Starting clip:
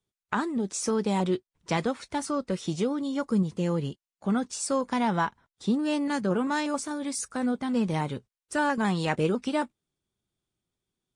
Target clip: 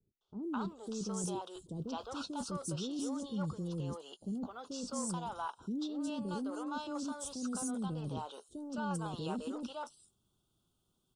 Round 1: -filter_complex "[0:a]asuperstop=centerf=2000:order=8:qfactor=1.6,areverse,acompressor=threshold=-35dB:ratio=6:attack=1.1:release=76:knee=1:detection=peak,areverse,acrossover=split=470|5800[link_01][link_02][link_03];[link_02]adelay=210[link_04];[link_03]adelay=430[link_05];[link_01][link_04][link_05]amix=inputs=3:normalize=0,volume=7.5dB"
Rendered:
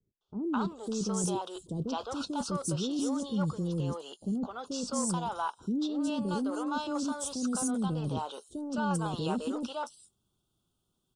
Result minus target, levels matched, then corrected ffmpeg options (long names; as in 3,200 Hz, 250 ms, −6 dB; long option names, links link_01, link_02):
downward compressor: peak gain reduction −6.5 dB
-filter_complex "[0:a]asuperstop=centerf=2000:order=8:qfactor=1.6,areverse,acompressor=threshold=-43dB:ratio=6:attack=1.1:release=76:knee=1:detection=peak,areverse,acrossover=split=470|5800[link_01][link_02][link_03];[link_02]adelay=210[link_04];[link_03]adelay=430[link_05];[link_01][link_04][link_05]amix=inputs=3:normalize=0,volume=7.5dB"